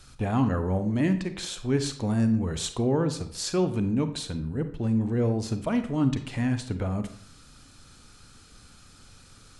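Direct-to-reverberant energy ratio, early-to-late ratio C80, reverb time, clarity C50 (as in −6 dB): 9.0 dB, 14.5 dB, 0.60 s, 11.0 dB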